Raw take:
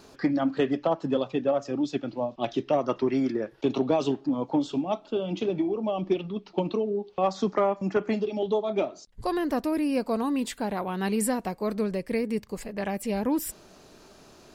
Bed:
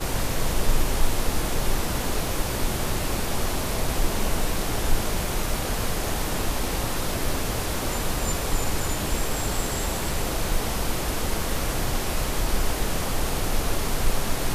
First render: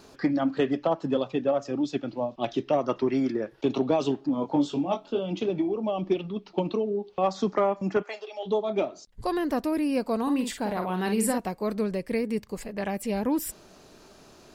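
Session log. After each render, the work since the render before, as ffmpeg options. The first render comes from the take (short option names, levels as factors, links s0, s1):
-filter_complex "[0:a]asettb=1/sr,asplit=3[s0][s1][s2];[s0]atrim=end=4.354[s3];[s1]atrim=start=4.35:end=5.19,asetpts=PTS-STARTPTS,afade=t=in:d=0.004:c=qsin,afade=t=out:st=0.836:d=0.004:c=qsin,asplit=2[s4][s5];[s5]adelay=21,volume=0.562[s6];[s4][s6]amix=inputs=2:normalize=0,atrim=end_sample=37044[s7];[s2]atrim=start=5.186[s8];[s3][s7]acrossfade=d=0.004:c1=hsin:c2=qsin[s9];[s9][s8]acrossfade=d=0.004:c1=qsin:c2=hsin,asplit=3[s10][s11][s12];[s10]afade=t=out:st=8.02:d=0.02[s13];[s11]highpass=f=590:w=0.5412,highpass=f=590:w=1.3066,afade=t=in:st=8.02:d=0.02,afade=t=out:st=8.45:d=0.02[s14];[s12]afade=t=in:st=8.45:d=0.02[s15];[s13][s14][s15]amix=inputs=3:normalize=0,asettb=1/sr,asplit=3[s16][s17][s18];[s16]atrim=end=10.224[s19];[s17]atrim=start=10.22:end=11.38,asetpts=PTS-STARTPTS,afade=t=in:d=0.004:c=qsin,afade=t=out:st=1.156:d=0.004:c=qsin,asplit=2[s20][s21];[s21]adelay=49,volume=0.473[s22];[s20][s22]amix=inputs=2:normalize=0,atrim=end_sample=51156[s23];[s18]atrim=start=11.376[s24];[s19][s23]acrossfade=d=0.004:c1=hsin:c2=qsin[s25];[s25][s24]acrossfade=d=0.004:c1=qsin:c2=hsin"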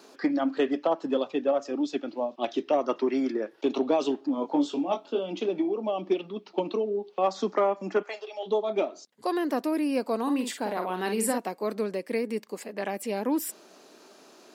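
-af "highpass=f=240:w=0.5412,highpass=f=240:w=1.3066"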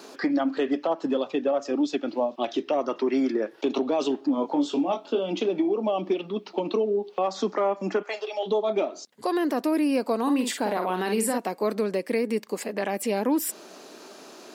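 -filter_complex "[0:a]asplit=2[s0][s1];[s1]acompressor=threshold=0.0224:ratio=6,volume=1.41[s2];[s0][s2]amix=inputs=2:normalize=0,alimiter=limit=0.168:level=0:latency=1:release=67"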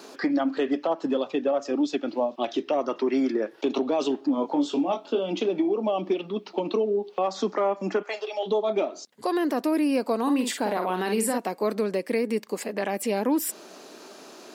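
-af anull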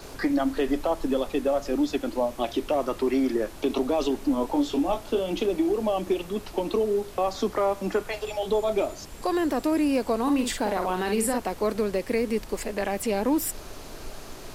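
-filter_complex "[1:a]volume=0.133[s0];[0:a][s0]amix=inputs=2:normalize=0"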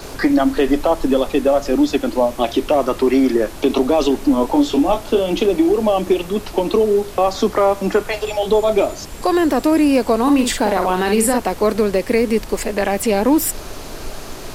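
-af "volume=2.99"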